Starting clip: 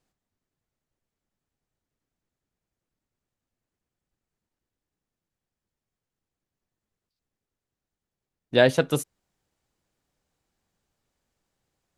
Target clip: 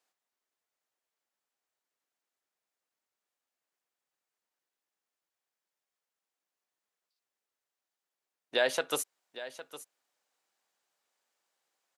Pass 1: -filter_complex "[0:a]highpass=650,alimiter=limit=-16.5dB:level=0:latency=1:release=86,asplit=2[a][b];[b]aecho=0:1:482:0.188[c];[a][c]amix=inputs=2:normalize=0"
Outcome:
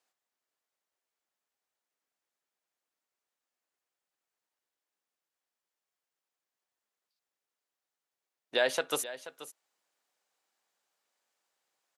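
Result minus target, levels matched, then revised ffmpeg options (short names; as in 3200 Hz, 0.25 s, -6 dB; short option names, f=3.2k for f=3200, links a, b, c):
echo 0.327 s early
-filter_complex "[0:a]highpass=650,alimiter=limit=-16.5dB:level=0:latency=1:release=86,asplit=2[a][b];[b]aecho=0:1:809:0.188[c];[a][c]amix=inputs=2:normalize=0"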